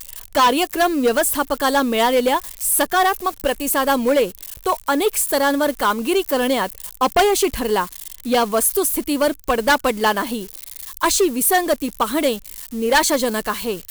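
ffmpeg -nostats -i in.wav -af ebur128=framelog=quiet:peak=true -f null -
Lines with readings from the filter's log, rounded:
Integrated loudness:
  I:         -18.7 LUFS
  Threshold: -28.9 LUFS
Loudness range:
  LRA:         1.4 LU
  Threshold: -38.9 LUFS
  LRA low:   -19.5 LUFS
  LRA high:  -18.1 LUFS
True peak:
  Peak:       -5.2 dBFS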